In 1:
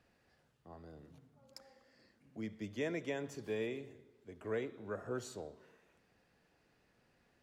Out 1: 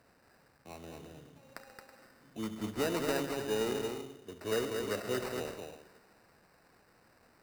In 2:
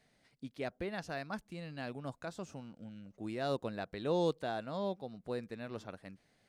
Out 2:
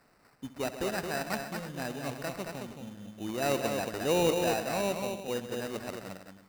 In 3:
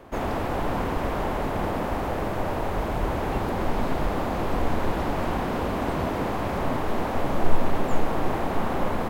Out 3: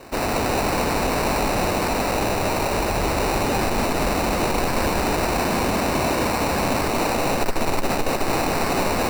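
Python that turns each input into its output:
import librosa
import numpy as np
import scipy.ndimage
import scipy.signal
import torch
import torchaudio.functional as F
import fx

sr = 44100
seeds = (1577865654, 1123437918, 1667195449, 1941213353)

y = fx.cvsd(x, sr, bps=64000)
y = fx.low_shelf(y, sr, hz=240.0, db=-5.0)
y = fx.echo_multitap(y, sr, ms=(69, 133, 222, 325), db=(-15.0, -12.0, -5.0, -13.5))
y = fx.sample_hold(y, sr, seeds[0], rate_hz=3300.0, jitter_pct=0)
y = fx.cheby_harmonics(y, sr, harmonics=(2, 5), levels_db=(-15, -13), full_scale_db=-10.0)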